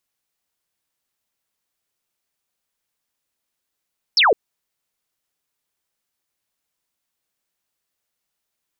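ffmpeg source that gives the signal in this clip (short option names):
-f lavfi -i "aevalsrc='0.282*clip(t/0.002,0,1)*clip((0.16-t)/0.002,0,1)*sin(2*PI*5700*0.16/log(380/5700)*(exp(log(380/5700)*t/0.16)-1))':d=0.16:s=44100"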